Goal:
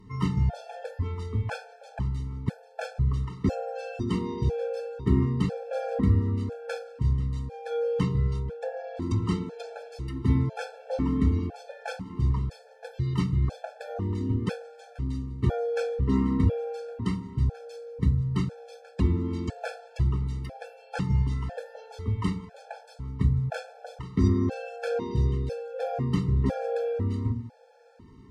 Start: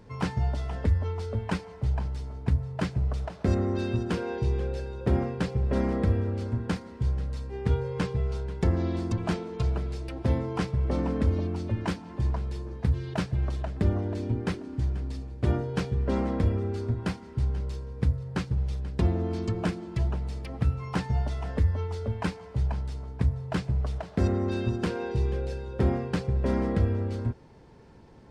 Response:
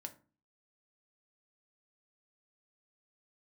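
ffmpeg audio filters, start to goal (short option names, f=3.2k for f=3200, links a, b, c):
-filter_complex "[0:a]asettb=1/sr,asplit=3[a][b][c];[a]atrim=end=8.394[d];[b]atrim=start=8.39:end=9.02,asetpts=PTS-STARTPTS,afade=t=in:d=0.004:c=qsin,afade=t=out:st=0.626:d=0.004:c=qsin,highshelf=f=2.9k:g=-11.5[e];[c]atrim=start=9.016[f];[d][e]acrossfade=d=0.004:c1=hsin:c2=qsin[g];[g][f]acrossfade=d=0.004:c1=qsin:c2=hsin[h];[1:a]atrim=start_sample=2205,asetrate=37485,aresample=44100[i];[h][i]afir=irnorm=-1:irlink=0,afftfilt=real='re*gt(sin(2*PI*1*pts/sr)*(1-2*mod(floor(b*sr/1024/450),2)),0)':imag='im*gt(sin(2*PI*1*pts/sr)*(1-2*mod(floor(b*sr/1024/450),2)),0)':win_size=1024:overlap=0.75,volume=5.5dB"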